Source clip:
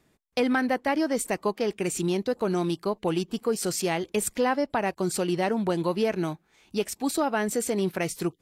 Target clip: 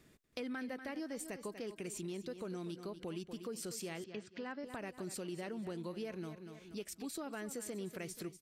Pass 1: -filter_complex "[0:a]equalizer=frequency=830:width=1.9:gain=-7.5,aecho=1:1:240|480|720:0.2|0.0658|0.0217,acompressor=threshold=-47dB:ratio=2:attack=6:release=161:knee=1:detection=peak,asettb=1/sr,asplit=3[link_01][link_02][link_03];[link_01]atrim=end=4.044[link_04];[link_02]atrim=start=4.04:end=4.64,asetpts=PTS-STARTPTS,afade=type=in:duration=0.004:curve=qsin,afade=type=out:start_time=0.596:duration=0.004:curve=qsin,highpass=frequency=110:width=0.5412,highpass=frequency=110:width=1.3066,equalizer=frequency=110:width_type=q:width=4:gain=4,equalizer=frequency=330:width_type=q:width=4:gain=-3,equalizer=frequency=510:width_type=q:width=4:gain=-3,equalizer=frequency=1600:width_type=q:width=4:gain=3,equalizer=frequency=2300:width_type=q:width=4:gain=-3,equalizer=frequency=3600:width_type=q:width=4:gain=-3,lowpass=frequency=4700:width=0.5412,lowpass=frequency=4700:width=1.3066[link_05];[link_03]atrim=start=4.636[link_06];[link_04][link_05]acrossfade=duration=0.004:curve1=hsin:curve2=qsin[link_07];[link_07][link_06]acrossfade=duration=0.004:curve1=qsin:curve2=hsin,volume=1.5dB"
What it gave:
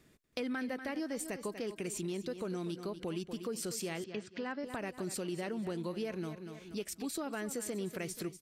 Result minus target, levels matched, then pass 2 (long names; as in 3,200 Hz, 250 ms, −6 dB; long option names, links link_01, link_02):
downward compressor: peak gain reduction −5 dB
-filter_complex "[0:a]equalizer=frequency=830:width=1.9:gain=-7.5,aecho=1:1:240|480|720:0.2|0.0658|0.0217,acompressor=threshold=-56.5dB:ratio=2:attack=6:release=161:knee=1:detection=peak,asettb=1/sr,asplit=3[link_01][link_02][link_03];[link_01]atrim=end=4.044[link_04];[link_02]atrim=start=4.04:end=4.64,asetpts=PTS-STARTPTS,afade=type=in:duration=0.004:curve=qsin,afade=type=out:start_time=0.596:duration=0.004:curve=qsin,highpass=frequency=110:width=0.5412,highpass=frequency=110:width=1.3066,equalizer=frequency=110:width_type=q:width=4:gain=4,equalizer=frequency=330:width_type=q:width=4:gain=-3,equalizer=frequency=510:width_type=q:width=4:gain=-3,equalizer=frequency=1600:width_type=q:width=4:gain=3,equalizer=frequency=2300:width_type=q:width=4:gain=-3,equalizer=frequency=3600:width_type=q:width=4:gain=-3,lowpass=frequency=4700:width=0.5412,lowpass=frequency=4700:width=1.3066[link_05];[link_03]atrim=start=4.636[link_06];[link_04][link_05]acrossfade=duration=0.004:curve1=hsin:curve2=qsin[link_07];[link_07][link_06]acrossfade=duration=0.004:curve1=qsin:curve2=hsin,volume=1.5dB"